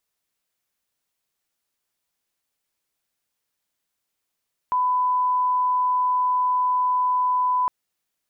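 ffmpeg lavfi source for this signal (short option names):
-f lavfi -i "sine=f=1000:d=2.96:r=44100,volume=0.06dB"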